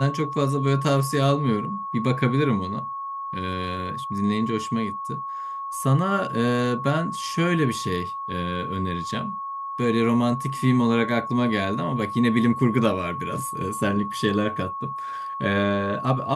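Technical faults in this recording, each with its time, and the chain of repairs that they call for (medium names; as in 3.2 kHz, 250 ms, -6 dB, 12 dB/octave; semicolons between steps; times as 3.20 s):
whine 1.1 kHz -29 dBFS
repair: band-stop 1.1 kHz, Q 30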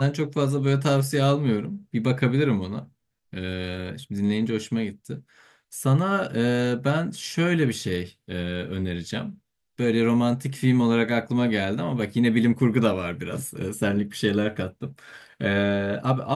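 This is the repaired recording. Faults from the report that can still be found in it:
nothing left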